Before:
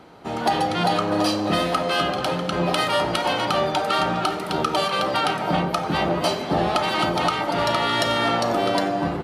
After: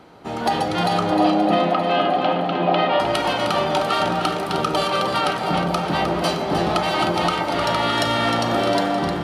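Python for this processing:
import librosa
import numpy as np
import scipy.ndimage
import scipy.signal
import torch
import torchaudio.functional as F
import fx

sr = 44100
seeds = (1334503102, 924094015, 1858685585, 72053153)

p1 = fx.cabinet(x, sr, low_hz=160.0, low_slope=24, high_hz=3400.0, hz=(280.0, 730.0, 1500.0), db=(4, 9, -4), at=(1.11, 3.0))
y = p1 + fx.echo_alternate(p1, sr, ms=154, hz=860.0, feedback_pct=79, wet_db=-6.0, dry=0)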